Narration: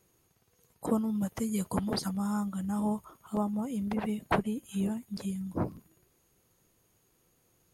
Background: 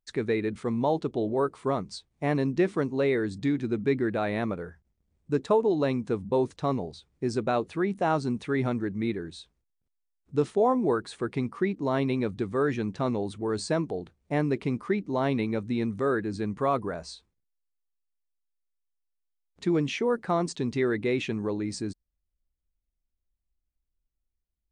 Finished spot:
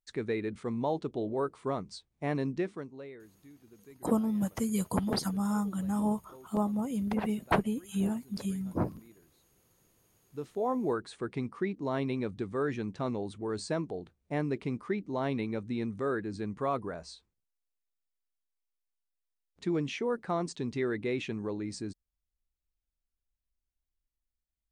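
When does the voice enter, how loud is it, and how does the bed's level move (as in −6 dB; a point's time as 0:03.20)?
3.20 s, +1.0 dB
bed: 0:02.51 −5.5 dB
0:03.35 −28.5 dB
0:09.81 −28.5 dB
0:10.76 −5.5 dB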